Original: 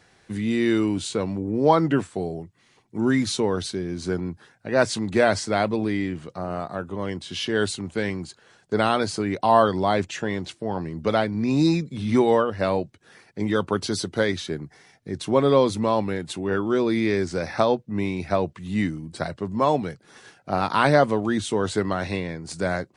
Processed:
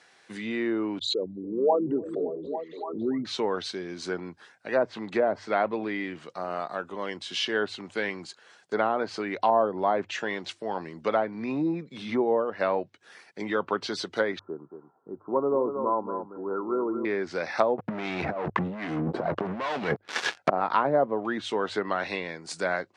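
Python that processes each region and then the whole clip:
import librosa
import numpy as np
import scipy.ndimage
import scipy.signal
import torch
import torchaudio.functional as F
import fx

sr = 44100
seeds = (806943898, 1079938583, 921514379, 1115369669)

y = fx.chain(x, sr, fx.envelope_sharpen(power=3.0),
    fx.echo_stepped(ms=283, hz=220.0, octaves=0.7, feedback_pct=70, wet_db=-7.0),
    fx.pre_swell(db_per_s=73.0), at=(0.99, 3.25))
y = fx.chain(y, sr, fx.cheby_ripple(hz=1400.0, ripple_db=6),
    fx.echo_single(ms=228, db=-8.5), at=(14.39, 17.05))
y = fx.chain(y, sr, fx.leveller(passes=5),
    fx.over_compress(threshold_db=-19.0, ratio=-0.5), at=(17.78, 20.5))
y = fx.hum_notches(y, sr, base_hz=50, count=2)
y = fx.env_lowpass_down(y, sr, base_hz=650.0, full_db=-15.0)
y = fx.weighting(y, sr, curve='A')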